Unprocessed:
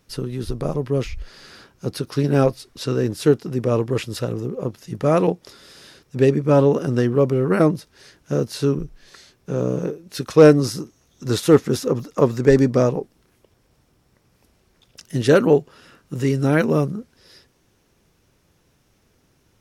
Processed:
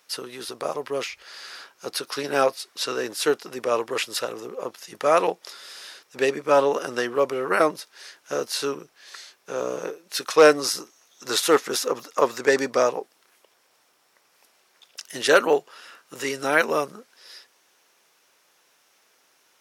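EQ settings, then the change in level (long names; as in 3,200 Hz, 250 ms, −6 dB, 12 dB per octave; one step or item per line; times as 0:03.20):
high-pass filter 760 Hz 12 dB per octave
+5.0 dB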